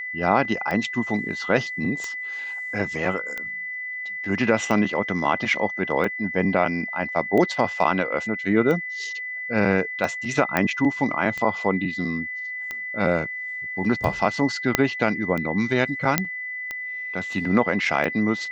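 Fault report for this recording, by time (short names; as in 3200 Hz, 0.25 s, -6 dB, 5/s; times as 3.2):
tick 45 rpm -16 dBFS
tone 2000 Hz -29 dBFS
10.57 pop -7 dBFS
14.75 pop -1 dBFS
16.18 pop -2 dBFS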